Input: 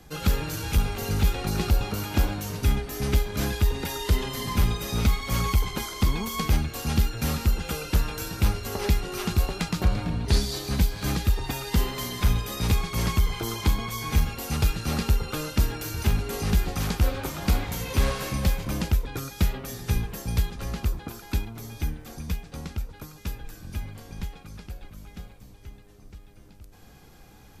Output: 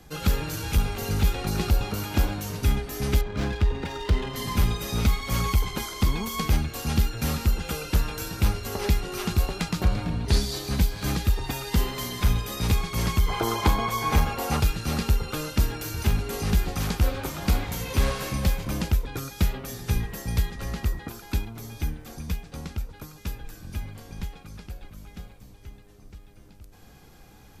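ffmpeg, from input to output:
ffmpeg -i in.wav -filter_complex "[0:a]asettb=1/sr,asplit=3[link_01][link_02][link_03];[link_01]atrim=end=3.214[link_04];[link_02]atrim=start=3.21:end=4.36,asetpts=PTS-STARTPTS,afade=type=in:duration=0.004:curve=qsin,afade=type=out:start_time=1.146:duration=0.004:curve=qsin,adynamicsmooth=sensitivity=4.5:basefreq=2200[link_05];[link_03]atrim=start=4.356[link_06];[link_04][link_05]acrossfade=duration=0.004:curve1=hsin:curve2=qsin[link_07];[link_07][link_06]acrossfade=duration=0.004:curve1=qsin:curve2=hsin,asettb=1/sr,asplit=3[link_08][link_09][link_10];[link_08]atrim=end=13.284[link_11];[link_09]atrim=start=13.28:end=14.6,asetpts=PTS-STARTPTS,afade=type=in:duration=0.004:curve=qsin,afade=type=out:start_time=1.316:duration=0.004:curve=qsin,equalizer=frequency=790:width_type=o:width=2.3:gain=10.5[link_12];[link_10]atrim=start=14.596[link_13];[link_11][link_12]acrossfade=duration=0.004:curve1=hsin:curve2=qsin[link_14];[link_14][link_13]acrossfade=duration=0.004:curve1=qsin:curve2=hsin,asettb=1/sr,asplit=3[link_15][link_16][link_17];[link_15]atrim=end=20.004[link_18];[link_16]atrim=start=20:end=21.09,asetpts=PTS-STARTPTS,afade=type=in:duration=0.004:curve=qsin,afade=type=out:start_time=1.086:duration=0.004:curve=qsin,aeval=exprs='val(0)+0.00447*sin(2*PI*1900*n/s)':channel_layout=same[link_19];[link_17]atrim=start=21.086[link_20];[link_18][link_19]acrossfade=duration=0.004:curve1=hsin:curve2=qsin[link_21];[link_21][link_20]acrossfade=duration=0.004:curve1=qsin:curve2=hsin" out.wav

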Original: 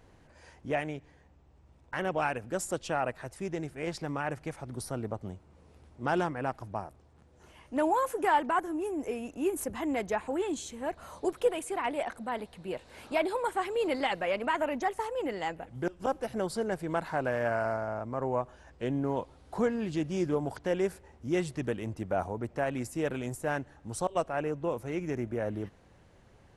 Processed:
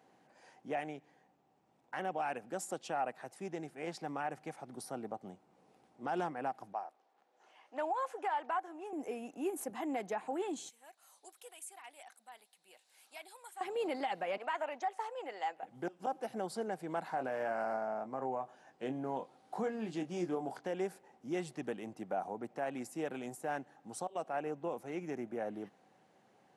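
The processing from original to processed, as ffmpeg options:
ffmpeg -i in.wav -filter_complex "[0:a]asettb=1/sr,asplit=3[link_01][link_02][link_03];[link_01]atrim=end=6.734[link_04];[link_02]atrim=start=6.73:end=8.93,asetpts=PTS-STARTPTS,afade=type=in:duration=0.004:curve=qsin,afade=type=out:start_time=2.196:duration=0.004:curve=qsin,highpass=540,lowpass=5700[link_05];[link_03]atrim=start=8.926[link_06];[link_04][link_05]acrossfade=duration=0.004:curve1=hsin:curve2=qsin[link_07];[link_07][link_06]acrossfade=duration=0.004:curve1=qsin:curve2=hsin,asettb=1/sr,asplit=3[link_08][link_09][link_10];[link_08]atrim=end=10.694[link_11];[link_09]atrim=start=10.69:end=13.61,asetpts=PTS-STARTPTS,afade=type=in:duration=0.004:curve=qsin,afade=type=out:start_time=2.916:duration=0.004:curve=qsin,aderivative[link_12];[link_10]atrim=start=13.606[link_13];[link_11][link_12]acrossfade=duration=0.004:curve1=hsin:curve2=qsin[link_14];[link_14][link_13]acrossfade=duration=0.004:curve1=qsin:curve2=hsin,asettb=1/sr,asplit=3[link_15][link_16][link_17];[link_15]atrim=end=14.374[link_18];[link_16]atrim=start=14.37:end=15.63,asetpts=PTS-STARTPTS,afade=type=in:duration=0.004:curve=qsin,afade=type=out:start_time=1.256:duration=0.004:curve=qsin,highpass=560,lowpass=7800[link_19];[link_17]atrim=start=15.626[link_20];[link_18][link_19]acrossfade=duration=0.004:curve1=hsin:curve2=qsin[link_21];[link_21][link_20]acrossfade=duration=0.004:curve1=qsin:curve2=hsin,asettb=1/sr,asplit=3[link_22][link_23][link_24];[link_22]atrim=end=17.154[link_25];[link_23]atrim=start=17.15:end=20.63,asetpts=PTS-STARTPTS,afade=type=in:duration=0.004:curve=qsin,afade=type=out:start_time=3.476:duration=0.004:curve=qsin,asplit=2[link_26][link_27];[link_27]adelay=23,volume=-9dB[link_28];[link_26][link_28]amix=inputs=2:normalize=0,atrim=end_sample=153468[link_29];[link_24]atrim=start=20.626[link_30];[link_25][link_29]acrossfade=duration=0.004:curve1=hsin:curve2=qsin[link_31];[link_31][link_30]acrossfade=duration=0.004:curve1=qsin:curve2=hsin,highpass=frequency=170:width=0.5412,highpass=frequency=170:width=1.3066,equalizer=frequency=770:width_type=o:width=0.21:gain=10.5,alimiter=limit=-20.5dB:level=0:latency=1:release=80,volume=-6.5dB" out.wav

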